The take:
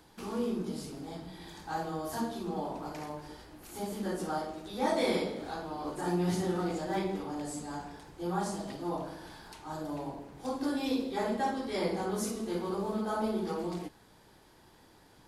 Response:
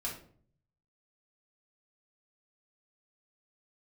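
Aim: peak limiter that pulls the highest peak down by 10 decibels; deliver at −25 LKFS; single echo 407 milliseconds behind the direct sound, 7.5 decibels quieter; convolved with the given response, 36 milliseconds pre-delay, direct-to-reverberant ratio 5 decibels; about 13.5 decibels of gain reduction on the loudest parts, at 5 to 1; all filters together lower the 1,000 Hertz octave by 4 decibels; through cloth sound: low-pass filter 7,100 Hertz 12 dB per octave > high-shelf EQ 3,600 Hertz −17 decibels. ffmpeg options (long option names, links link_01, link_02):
-filter_complex "[0:a]equalizer=frequency=1000:width_type=o:gain=-4,acompressor=threshold=-42dB:ratio=5,alimiter=level_in=17.5dB:limit=-24dB:level=0:latency=1,volume=-17.5dB,aecho=1:1:407:0.422,asplit=2[link_01][link_02];[1:a]atrim=start_sample=2205,adelay=36[link_03];[link_02][link_03]afir=irnorm=-1:irlink=0,volume=-6.5dB[link_04];[link_01][link_04]amix=inputs=2:normalize=0,lowpass=7100,highshelf=frequency=3600:gain=-17,volume=24dB"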